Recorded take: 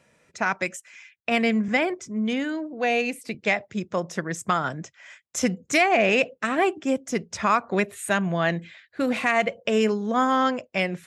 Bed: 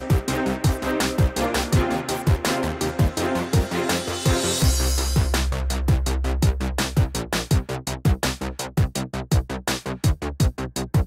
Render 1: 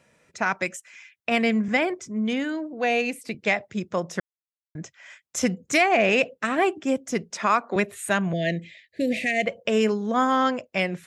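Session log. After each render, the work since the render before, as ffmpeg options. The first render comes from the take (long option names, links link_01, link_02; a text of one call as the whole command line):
ffmpeg -i in.wav -filter_complex "[0:a]asettb=1/sr,asplit=3[link_01][link_02][link_03];[link_01]atrim=end=7.304[link_04];[link_02]atrim=start=7.3:end=7.76,asetpts=PTS-STARTPTS,afade=type=in:duration=0.004:curve=qsin,afade=type=out:start_time=0.456:duration=0.004:curve=qsin,highpass=frequency=210:width=0.5412,highpass=frequency=210:width=1.3066[link_05];[link_03]atrim=start=7.756[link_06];[link_04][link_05]acrossfade=duration=0.004:curve1=hsin:curve2=qsin[link_07];[link_07][link_06]acrossfade=duration=0.004:curve1=qsin:curve2=hsin,asettb=1/sr,asplit=3[link_08][link_09][link_10];[link_08]atrim=end=8.334[link_11];[link_09]atrim=start=8.33:end=9.46,asetpts=PTS-STARTPTS,afade=type=in:duration=0.004:curve=qsin,afade=type=out:start_time=1.126:duration=0.004:curve=qsin,asuperstop=centerf=1100:order=12:qfactor=1[link_12];[link_10]atrim=start=9.456[link_13];[link_11][link_12]acrossfade=duration=0.004:curve1=hsin:curve2=qsin[link_14];[link_14][link_13]acrossfade=duration=0.004:curve1=qsin:curve2=hsin,asplit=3[link_15][link_16][link_17];[link_15]atrim=end=4.2,asetpts=PTS-STARTPTS,afade=type=out:start_time=4.196:duration=0.004:curve=hsin[link_18];[link_16]atrim=start=4.2:end=4.75,asetpts=PTS-STARTPTS,volume=0[link_19];[link_17]atrim=start=4.75,asetpts=PTS-STARTPTS,afade=type=in:duration=0.004:curve=hsin[link_20];[link_18][link_19][link_20]concat=n=3:v=0:a=1" out.wav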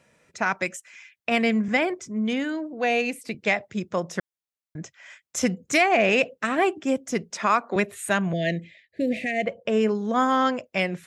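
ffmpeg -i in.wav -filter_complex "[0:a]asettb=1/sr,asplit=3[link_01][link_02][link_03];[link_01]atrim=end=8.614[link_04];[link_02]atrim=start=8.61:end=9.95,asetpts=PTS-STARTPTS,afade=type=in:duration=0.004:curve=qsin,afade=type=out:start_time=1.336:duration=0.004:curve=qsin,highshelf=frequency=2400:gain=-9[link_05];[link_03]atrim=start=9.946[link_06];[link_04][link_05]acrossfade=duration=0.004:curve1=hsin:curve2=qsin[link_07];[link_07][link_06]acrossfade=duration=0.004:curve1=qsin:curve2=hsin" out.wav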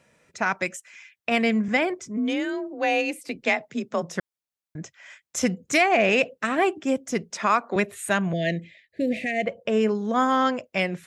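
ffmpeg -i in.wav -filter_complex "[0:a]asplit=3[link_01][link_02][link_03];[link_01]afade=type=out:start_time=2.16:duration=0.02[link_04];[link_02]afreqshift=33,afade=type=in:start_time=2.16:duration=0.02,afade=type=out:start_time=4.01:duration=0.02[link_05];[link_03]afade=type=in:start_time=4.01:duration=0.02[link_06];[link_04][link_05][link_06]amix=inputs=3:normalize=0" out.wav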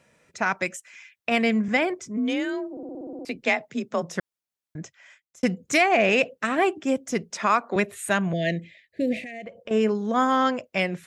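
ffmpeg -i in.wav -filter_complex "[0:a]asettb=1/sr,asplit=3[link_01][link_02][link_03];[link_01]atrim=end=9.204[link_04];[link_02]atrim=start=9.2:end=9.71,asetpts=PTS-STARTPTS,afade=type=in:duration=0.004:curve=qsin,afade=type=out:start_time=0.506:duration=0.004:curve=qsin,acompressor=threshold=-35dB:ratio=5:attack=3.2:release=140:knee=1:detection=peak[link_05];[link_03]atrim=start=9.706[link_06];[link_04][link_05]acrossfade=duration=0.004:curve1=hsin:curve2=qsin[link_07];[link_07][link_06]acrossfade=duration=0.004:curve1=qsin:curve2=hsin,asplit=11[link_08][link_09][link_10][link_11][link_12][link_13][link_14][link_15][link_16][link_17][link_18];[link_08]atrim=end=2.772[link_19];[link_09]atrim=start=2.708:end=2.772[link_20];[link_10]atrim=start=2.708:end=2.772[link_21];[link_11]atrim=start=2.708:end=2.772[link_22];[link_12]atrim=start=2.708:end=2.772[link_23];[link_13]atrim=start=2.708:end=2.772[link_24];[link_14]atrim=start=2.708:end=2.772[link_25];[link_15]atrim=start=2.708:end=2.772[link_26];[link_16]atrim=start=2.708:end=2.772[link_27];[link_17]atrim=start=3.248:end=5.43,asetpts=PTS-STARTPTS,afade=type=out:start_time=1.532:duration=0.65[link_28];[link_18]atrim=start=5.43,asetpts=PTS-STARTPTS,afade=type=in:duration=0.004:curve=hsin[link_29];[link_19][link_20]acrossfade=duration=0.004:curve1=hsin:curve2=hsin[link_30];[link_30][link_21]acrossfade=duration=0.004:curve1=hsin:curve2=hsin[link_31];[link_31][link_22]acrossfade=duration=0.004:curve1=hsin:curve2=hsin[link_32];[link_32][link_23]acrossfade=duration=0.004:curve1=hsin:curve2=hsin[link_33];[link_33][link_24]acrossfade=duration=0.004:curve1=hsin:curve2=hsin[link_34];[link_34][link_25]acrossfade=duration=0.004:curve1=hsin:curve2=hsin[link_35];[link_35][link_26]acrossfade=duration=0.004:curve1=hsin:curve2=hsin[link_36];[link_36][link_27]acrossfade=duration=0.004:curve1=hsin:curve2=hsin[link_37];[link_28][link_29]concat=n=2:v=0:a=1[link_38];[link_37][link_38]acrossfade=duration=0.004:curve1=hsin:curve2=hsin" out.wav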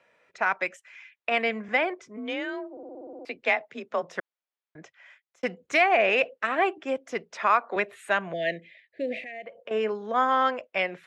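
ffmpeg -i in.wav -filter_complex "[0:a]acrossover=split=390 3800:gain=0.141 1 0.126[link_01][link_02][link_03];[link_01][link_02][link_03]amix=inputs=3:normalize=0" out.wav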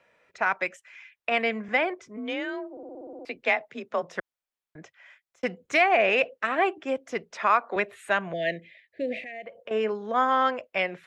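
ffmpeg -i in.wav -af "lowshelf=frequency=81:gain=11" out.wav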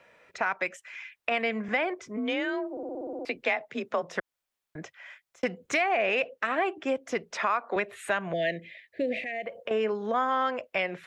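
ffmpeg -i in.wav -filter_complex "[0:a]asplit=2[link_01][link_02];[link_02]alimiter=limit=-19dB:level=0:latency=1:release=86,volume=-1dB[link_03];[link_01][link_03]amix=inputs=2:normalize=0,acompressor=threshold=-29dB:ratio=2" out.wav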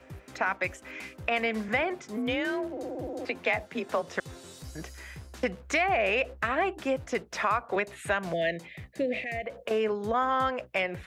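ffmpeg -i in.wav -i bed.wav -filter_complex "[1:a]volume=-25dB[link_01];[0:a][link_01]amix=inputs=2:normalize=0" out.wav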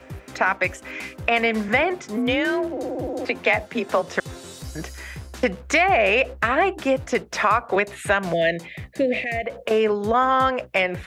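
ffmpeg -i in.wav -af "volume=8dB" out.wav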